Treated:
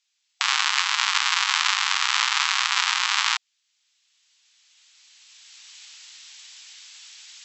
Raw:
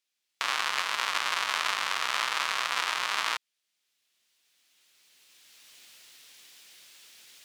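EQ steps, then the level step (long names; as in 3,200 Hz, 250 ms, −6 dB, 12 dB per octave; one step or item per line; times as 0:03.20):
linear-phase brick-wall band-pass 740–7,900 Hz
high-shelf EQ 2,500 Hz +9 dB
+3.0 dB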